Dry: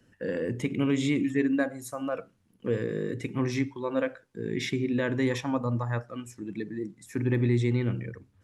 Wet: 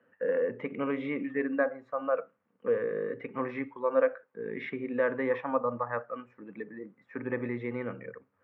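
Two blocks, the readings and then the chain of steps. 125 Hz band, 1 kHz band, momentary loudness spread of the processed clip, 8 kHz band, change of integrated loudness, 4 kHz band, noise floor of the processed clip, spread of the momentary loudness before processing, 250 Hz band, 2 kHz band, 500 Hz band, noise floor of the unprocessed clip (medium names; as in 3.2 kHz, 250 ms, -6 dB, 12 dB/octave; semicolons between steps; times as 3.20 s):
-17.0 dB, +3.0 dB, 14 LU, under -35 dB, -2.5 dB, under -15 dB, -74 dBFS, 12 LU, -7.5 dB, -1.0 dB, +2.0 dB, -67 dBFS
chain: cabinet simulation 330–2100 Hz, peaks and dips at 340 Hz -10 dB, 510 Hz +7 dB, 1.2 kHz +6 dB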